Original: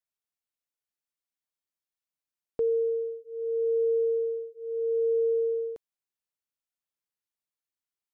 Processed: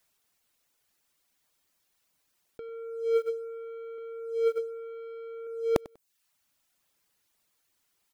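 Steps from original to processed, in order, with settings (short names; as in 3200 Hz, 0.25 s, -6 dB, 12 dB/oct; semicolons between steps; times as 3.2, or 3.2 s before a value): reverb removal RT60 0.68 s; 3.98–5.47 low shelf 170 Hz +11 dB; sample leveller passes 2; negative-ratio compressor -44 dBFS, ratio -1; on a send: feedback echo 97 ms, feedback 20%, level -22 dB; on the sum: gain +9 dB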